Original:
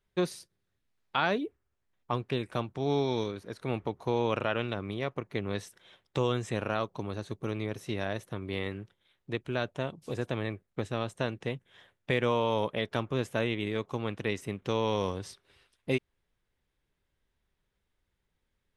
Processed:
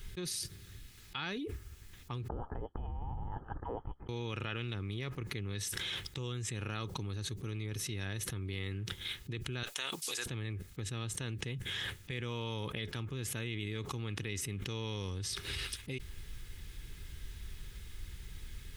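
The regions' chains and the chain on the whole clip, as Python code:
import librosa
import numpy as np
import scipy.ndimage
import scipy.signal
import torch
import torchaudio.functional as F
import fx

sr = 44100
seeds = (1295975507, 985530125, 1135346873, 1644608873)

y = fx.chain(x, sr, fx.ellip_highpass(hz=2500.0, order=4, stop_db=60),
    fx.freq_invert(carrier_hz=3200), at=(2.28, 4.09))
y = fx.chain(y, sr, fx.highpass(hz=790.0, slope=12),
    fx.high_shelf(hz=3200.0, db=10.0), at=(9.63, 10.26))
y = fx.tone_stack(y, sr, knobs='6-0-2')
y = y + 0.31 * np.pad(y, (int(2.4 * sr / 1000.0), 0))[:len(y)]
y = fx.env_flatten(y, sr, amount_pct=100)
y = y * 10.0 ** (6.0 / 20.0)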